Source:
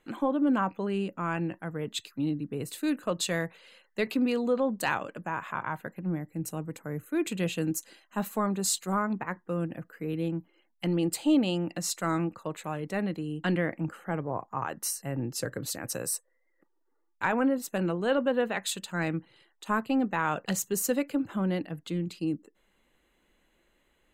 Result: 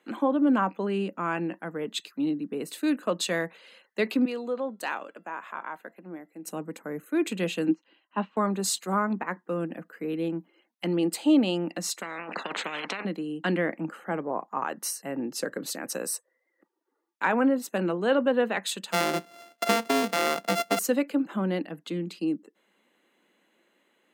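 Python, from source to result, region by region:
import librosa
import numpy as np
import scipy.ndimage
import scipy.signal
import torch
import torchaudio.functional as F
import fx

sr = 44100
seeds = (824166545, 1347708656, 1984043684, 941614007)

y = fx.chain(x, sr, fx.highpass(hz=280.0, slope=12),
    fx.comb_fb(f0_hz=680.0, decay_s=0.42, harmonics='all', damping=0.0, mix_pct=50), at=(4.25, 6.47))
y = fx.chain(y, sr, fx.cabinet(low_hz=180.0, low_slope=12, high_hz=3500.0, hz=(180.0, 300.0, 980.0, 2900.0), db=(5, 7, 7, 8)),
    fx.upward_expand(threshold_db=-47.0, expansion=1.5), at=(7.68, 8.37))
y = fx.chain(y, sr, fx.lowpass(hz=1400.0, slope=12),
    fx.over_compress(threshold_db=-35.0, ratio=-0.5),
    fx.spectral_comp(ratio=10.0), at=(12.02, 13.05))
y = fx.chain(y, sr, fx.sample_sort(block=64),
    fx.band_squash(depth_pct=100), at=(18.92, 20.79))
y = scipy.signal.sosfilt(scipy.signal.butter(6, 190.0, 'highpass', fs=sr, output='sos'), y)
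y = fx.high_shelf(y, sr, hz=6900.0, db=-5.0)
y = fx.notch(y, sr, hz=7300.0, q=24.0)
y = F.gain(torch.from_numpy(y), 3.0).numpy()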